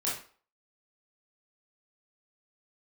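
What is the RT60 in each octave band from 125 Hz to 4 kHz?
0.30, 0.35, 0.40, 0.45, 0.40, 0.35 s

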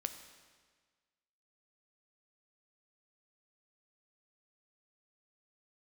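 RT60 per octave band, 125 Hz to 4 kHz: 1.6, 1.5, 1.5, 1.5, 1.5, 1.4 s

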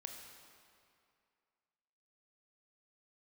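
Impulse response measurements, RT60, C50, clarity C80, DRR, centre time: 2.4 s, 4.0 dB, 5.0 dB, 2.5 dB, 65 ms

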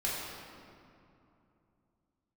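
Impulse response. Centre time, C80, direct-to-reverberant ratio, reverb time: 0.129 s, 0.5 dB, -6.5 dB, 2.8 s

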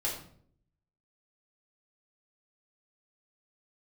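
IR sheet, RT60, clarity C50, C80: 0.60 s, 5.5 dB, 9.0 dB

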